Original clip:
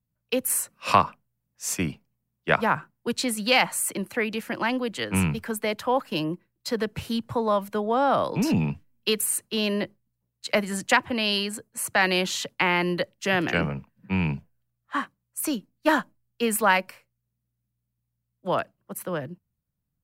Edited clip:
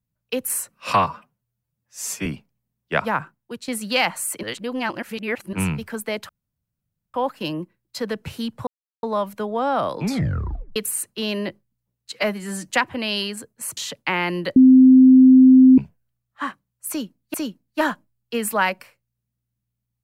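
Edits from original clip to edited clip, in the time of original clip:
0.94–1.82 stretch 1.5×
2.78–3.24 fade out, to -12 dB
3.99–5.09 reverse
5.85 insert room tone 0.85 s
7.38 insert silence 0.36 s
8.37 tape stop 0.74 s
10.48–10.86 stretch 1.5×
11.93–12.3 cut
13.09–14.31 bleep 259 Hz -6.5 dBFS
15.42–15.87 loop, 2 plays

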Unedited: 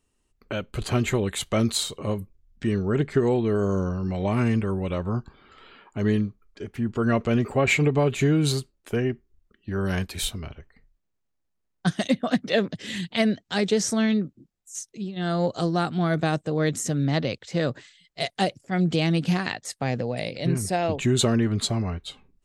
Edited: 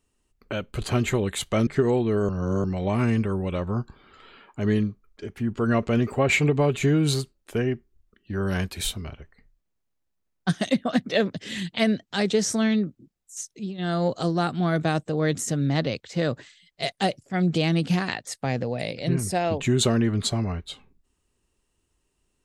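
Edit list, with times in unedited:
1.67–3.05 cut
3.67–4.02 reverse

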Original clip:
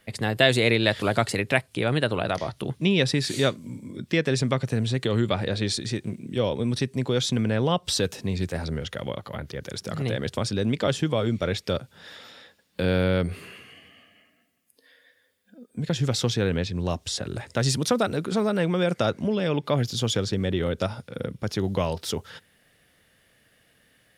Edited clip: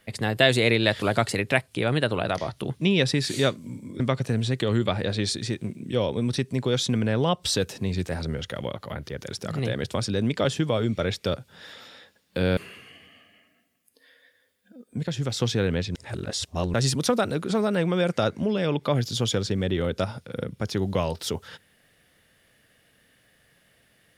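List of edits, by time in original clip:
4–4.43 cut
13–13.39 cut
15.86–16.22 gain -3.5 dB
16.77–17.56 reverse

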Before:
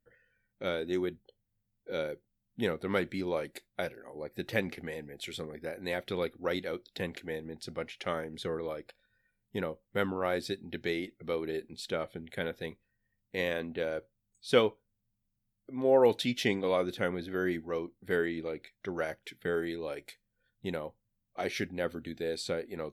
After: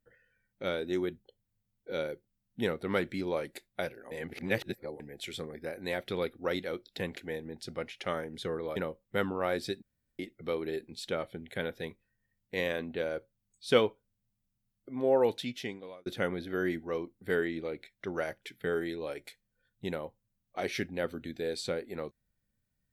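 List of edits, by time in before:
4.11–5 reverse
8.76–9.57 cut
10.63–11 room tone
15.72–16.87 fade out

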